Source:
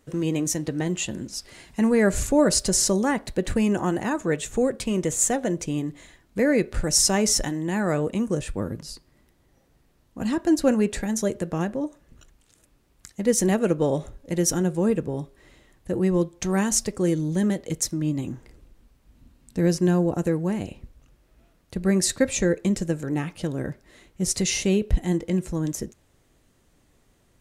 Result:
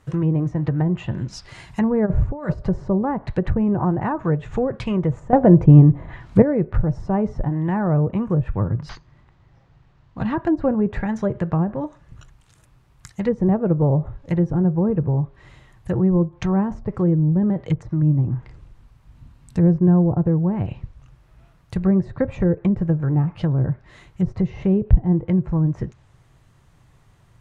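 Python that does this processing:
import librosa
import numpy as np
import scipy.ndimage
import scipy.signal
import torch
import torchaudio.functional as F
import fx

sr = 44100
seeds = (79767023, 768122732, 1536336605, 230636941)

y = fx.over_compress(x, sr, threshold_db=-23.0, ratio=-0.5, at=(2.05, 2.61), fade=0.02)
y = fx.resample_linear(y, sr, factor=4, at=(8.89, 10.35))
y = fx.edit(y, sr, fx.clip_gain(start_s=5.33, length_s=1.09, db=11.5), tone=tone)
y = fx.graphic_eq(y, sr, hz=(125, 250, 500, 1000), db=(11, -8, -5, 5))
y = fx.env_lowpass_down(y, sr, base_hz=650.0, full_db=-21.0)
y = fx.high_shelf(y, sr, hz=4600.0, db=-9.0)
y = y * librosa.db_to_amplitude(6.0)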